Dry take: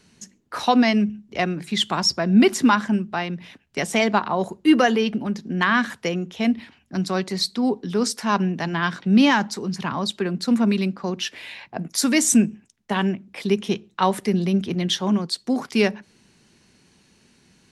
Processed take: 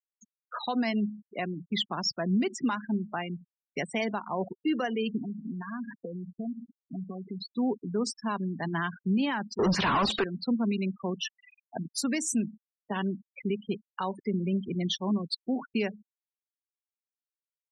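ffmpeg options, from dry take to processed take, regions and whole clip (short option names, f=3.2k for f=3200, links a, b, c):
-filter_complex "[0:a]asettb=1/sr,asplit=3[a][b][c];[a]atrim=end=5.214[d];[b]atrim=start=5.21:end=7.47,asetpts=PTS-STARTPTS,afade=t=in:d=0.004:c=qsin,afade=t=out:st=2.256:d=0.004:c=qsin,tiltshelf=f=1.2k:g=5.5,acompressor=threshold=-28dB:ratio=12:attack=3.2:release=140:knee=1:detection=peak,aecho=1:1:4.3:0.37,atrim=end_sample=99666[e];[c]atrim=start=7.466[f];[d][e]acrossfade=d=0.004:c1=hsin:c2=qsin[g];[g][f]acrossfade=d=0.004:c1=qsin:c2=hsin,asettb=1/sr,asplit=3[h][i][j];[h]atrim=end=9.594[k];[i]atrim=start=9.59:end=10.24,asetpts=PTS-STARTPTS,afade=t=in:d=0.004:c=qsin,afade=t=out:st=0.646:d=0.004:c=qsin,highshelf=f=3k:g=10,asplit=2[l][m];[m]highpass=f=720:p=1,volume=36dB,asoftclip=type=tanh:threshold=-5.5dB[n];[l][n]amix=inputs=2:normalize=0,lowpass=f=1.9k:p=1,volume=-6dB[o];[j]atrim=start=10.236[p];[k][o]acrossfade=d=0.004:c1=hsin:c2=qsin[q];[q][p]acrossfade=d=0.004:c1=qsin:c2=hsin,afftfilt=real='re*gte(hypot(re,im),0.0708)':imag='im*gte(hypot(re,im),0.0708)':win_size=1024:overlap=0.75,alimiter=limit=-14.5dB:level=0:latency=1:release=340,volume=-5.5dB"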